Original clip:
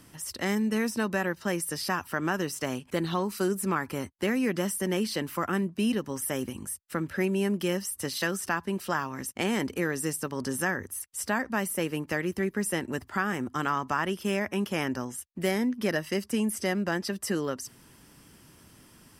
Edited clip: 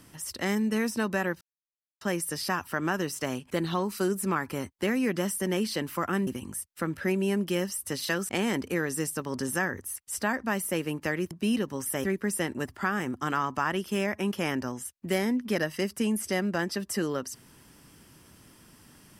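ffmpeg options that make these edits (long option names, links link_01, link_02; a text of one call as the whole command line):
ffmpeg -i in.wav -filter_complex "[0:a]asplit=6[link_01][link_02][link_03][link_04][link_05][link_06];[link_01]atrim=end=1.41,asetpts=PTS-STARTPTS,afade=type=out:start_time=1.406:duration=0.004:curve=hsin,apad=pad_dur=0.6[link_07];[link_02]atrim=start=1.41:end=5.672,asetpts=PTS-STARTPTS,afade=type=in:duration=0.004:curve=hsin[link_08];[link_03]atrim=start=6.398:end=8.422[link_09];[link_04]atrim=start=9.348:end=12.372[link_10];[link_05]atrim=start=5.668:end=6.402[link_11];[link_06]atrim=start=12.368[link_12];[link_07][link_08]concat=n=2:v=0:a=1[link_13];[link_13][link_09]acrossfade=duration=0.004:curve1=hsin:curve2=hsin[link_14];[link_14][link_10]acrossfade=duration=0.004:curve1=hsin:curve2=hsin[link_15];[link_15][link_11]acrossfade=duration=0.004:curve1=hsin:curve2=hsin[link_16];[link_16][link_12]acrossfade=duration=0.004:curve1=hsin:curve2=hsin" out.wav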